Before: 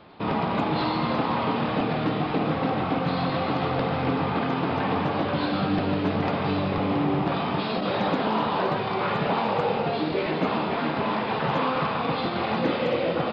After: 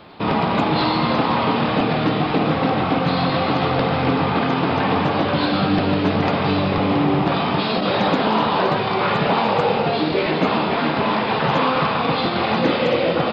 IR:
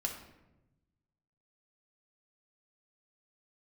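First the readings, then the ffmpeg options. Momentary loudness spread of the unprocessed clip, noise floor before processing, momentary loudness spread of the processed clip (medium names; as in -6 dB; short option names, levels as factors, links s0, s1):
2 LU, -28 dBFS, 2 LU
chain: -af "highshelf=f=3700:g=6,volume=2"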